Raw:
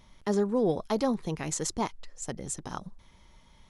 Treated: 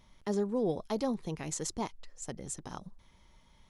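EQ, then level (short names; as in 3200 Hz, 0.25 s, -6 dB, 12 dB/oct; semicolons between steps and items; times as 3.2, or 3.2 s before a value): dynamic EQ 1400 Hz, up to -4 dB, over -44 dBFS, Q 1.3; -4.5 dB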